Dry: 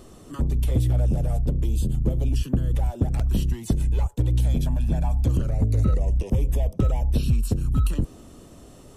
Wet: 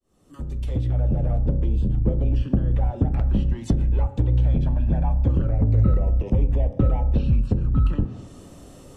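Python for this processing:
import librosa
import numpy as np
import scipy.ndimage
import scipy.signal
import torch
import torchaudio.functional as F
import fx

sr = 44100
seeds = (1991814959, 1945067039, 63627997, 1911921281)

y = fx.fade_in_head(x, sr, length_s=1.33)
y = fx.rev_fdn(y, sr, rt60_s=0.79, lf_ratio=1.35, hf_ratio=0.6, size_ms=11.0, drr_db=9.0)
y = fx.env_lowpass_down(y, sr, base_hz=2000.0, full_db=-18.5)
y = y * librosa.db_to_amplitude(1.5)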